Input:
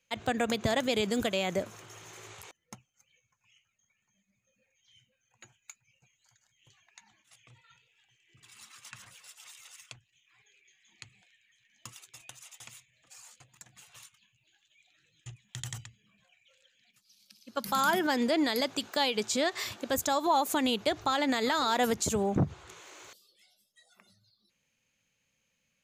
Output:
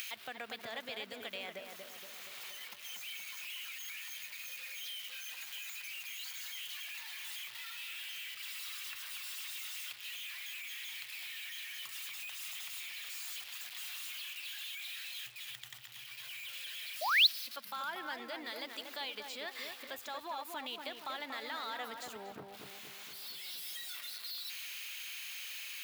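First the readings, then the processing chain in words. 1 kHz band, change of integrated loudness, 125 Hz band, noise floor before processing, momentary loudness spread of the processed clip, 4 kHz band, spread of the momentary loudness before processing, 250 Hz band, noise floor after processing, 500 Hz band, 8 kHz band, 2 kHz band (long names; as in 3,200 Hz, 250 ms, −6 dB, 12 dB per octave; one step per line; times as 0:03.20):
−11.5 dB, −10.5 dB, below −25 dB, −78 dBFS, 4 LU, 0.0 dB, 22 LU, −22.0 dB, −51 dBFS, −16.5 dB, −5.5 dB, −2.0 dB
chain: spike at every zero crossing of −28 dBFS
downward compressor 2 to 1, threshold −31 dBFS, peak gain reduction 6 dB
high-frequency loss of the air 410 metres
feedback echo with a low-pass in the loop 236 ms, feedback 55%, low-pass 1,700 Hz, level −4.5 dB
upward compression, threshold −39 dBFS
sound drawn into the spectrogram rise, 0:17.01–0:17.27, 570–4,500 Hz −25 dBFS
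first difference
level +9 dB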